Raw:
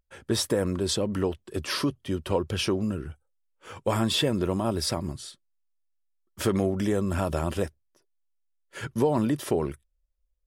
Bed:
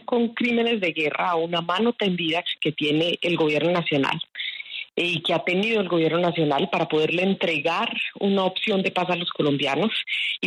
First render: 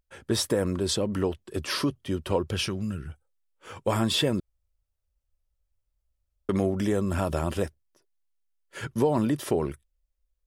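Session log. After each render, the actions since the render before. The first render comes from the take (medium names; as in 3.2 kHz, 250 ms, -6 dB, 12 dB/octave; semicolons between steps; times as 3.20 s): 2.66–3.08 s: high-order bell 520 Hz -9 dB 2.4 oct; 4.40–6.49 s: room tone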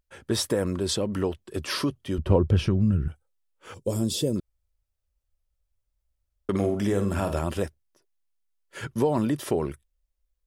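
2.18–3.08 s: tilt EQ -3.5 dB/octave; 3.74–4.36 s: FFT filter 520 Hz 0 dB, 760 Hz -14 dB, 1.8 kHz -21 dB, 3 kHz -11 dB, 5.7 kHz +2 dB; 6.50–7.39 s: flutter echo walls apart 8.5 m, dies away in 0.37 s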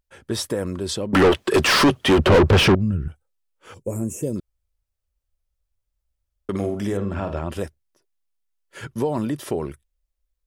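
1.13–2.75 s: overdrive pedal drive 37 dB, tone 2.4 kHz, clips at -6 dBFS; 3.82–4.23 s: elliptic band-stop 2.5–6.3 kHz, stop band 50 dB; 6.97–7.52 s: low-pass 3.2 kHz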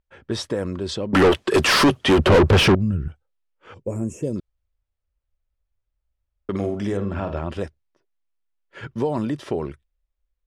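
level-controlled noise filter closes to 2.9 kHz, open at -14 dBFS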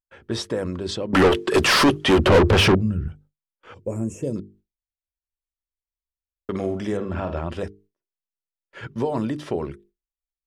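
hum notches 50/100/150/200/250/300/350/400/450 Hz; gate with hold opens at -49 dBFS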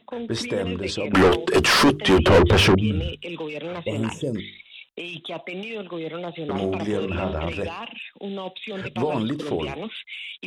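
add bed -10.5 dB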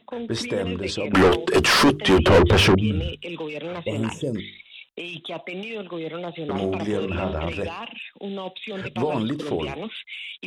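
no audible change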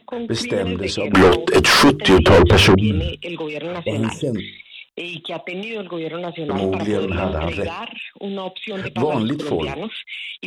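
trim +4.5 dB; peak limiter -3 dBFS, peak gain reduction 2 dB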